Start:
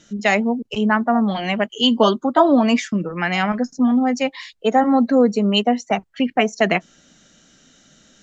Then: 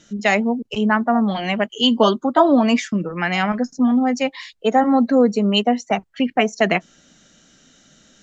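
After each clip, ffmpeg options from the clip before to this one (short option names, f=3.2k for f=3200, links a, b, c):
-af anull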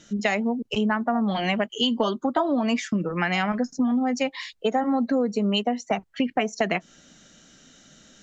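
-af "acompressor=threshold=-20dB:ratio=6"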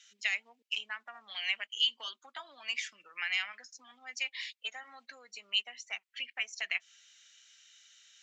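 -af "highpass=f=2.4k:t=q:w=1.9,volume=-7.5dB"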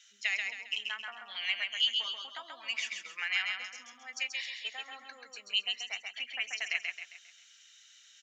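-af "aecho=1:1:134|268|402|536|670:0.631|0.259|0.106|0.0435|0.0178"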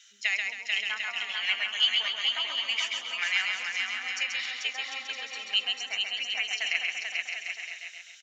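-af "aecho=1:1:440|748|963.6|1115|1220:0.631|0.398|0.251|0.158|0.1,volume=4dB"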